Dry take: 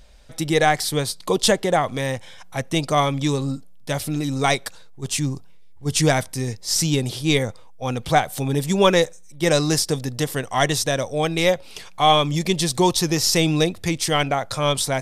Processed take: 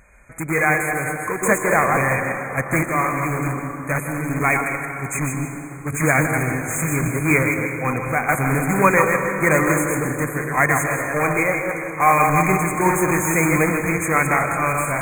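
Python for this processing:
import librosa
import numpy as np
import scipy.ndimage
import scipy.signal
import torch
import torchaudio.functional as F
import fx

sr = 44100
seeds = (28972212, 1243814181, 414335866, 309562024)

p1 = fx.reverse_delay(x, sr, ms=116, wet_db=-4.5)
p2 = fx.highpass(p1, sr, hz=110.0, slope=6)
p3 = fx.low_shelf(p2, sr, hz=170.0, db=5.0)
p4 = (np.mod(10.0 ** (16.5 / 20.0) * p3 + 1.0, 2.0) - 1.0) / 10.0 ** (16.5 / 20.0)
p5 = p3 + (p4 * 10.0 ** (-6.5 / 20.0))
p6 = fx.band_shelf(p5, sr, hz=1700.0, db=9.0, octaves=1.7)
p7 = fx.tremolo_random(p6, sr, seeds[0], hz=3.5, depth_pct=55)
p8 = fx.brickwall_bandstop(p7, sr, low_hz=2500.0, high_hz=6300.0)
p9 = p8 + fx.echo_single(p8, sr, ms=158, db=-11.5, dry=0)
p10 = fx.rev_plate(p9, sr, seeds[1], rt60_s=3.6, hf_ratio=0.5, predelay_ms=110, drr_db=6.5)
y = p10 * 10.0 ** (-1.5 / 20.0)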